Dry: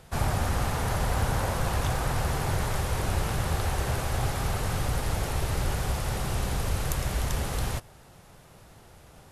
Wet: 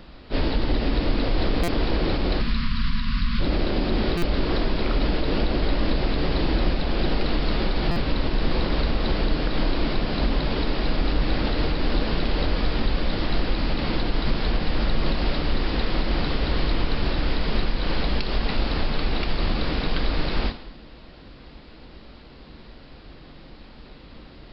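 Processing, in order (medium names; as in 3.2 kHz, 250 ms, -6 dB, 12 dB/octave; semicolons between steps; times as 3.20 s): peak limiter -20.5 dBFS, peak gain reduction 8.5 dB; spectral selection erased 0.91–1.30 s, 710–2500 Hz; wide varispeed 0.38×; gated-style reverb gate 310 ms falling, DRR 9 dB; buffer glitch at 1.63/4.17/7.91 s, samples 256, times 8; trim +7.5 dB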